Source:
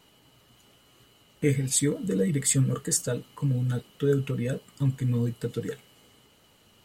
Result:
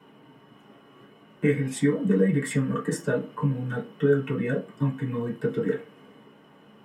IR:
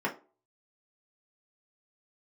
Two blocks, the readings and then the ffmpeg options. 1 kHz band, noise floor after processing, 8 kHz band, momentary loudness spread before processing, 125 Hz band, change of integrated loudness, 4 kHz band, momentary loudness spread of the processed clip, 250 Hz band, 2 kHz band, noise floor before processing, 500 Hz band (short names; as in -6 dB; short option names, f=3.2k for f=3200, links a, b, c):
+8.0 dB, -54 dBFS, -13.5 dB, 9 LU, -1.5 dB, +0.5 dB, -7.0 dB, 7 LU, +3.5 dB, +6.5 dB, -60 dBFS, +4.0 dB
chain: -filter_complex "[0:a]highshelf=f=3k:g=-9.5,acrossover=split=750|5200[a][b][c];[a]acompressor=threshold=-32dB:ratio=6[d];[d][b][c]amix=inputs=3:normalize=0[e];[1:a]atrim=start_sample=2205[f];[e][f]afir=irnorm=-1:irlink=0"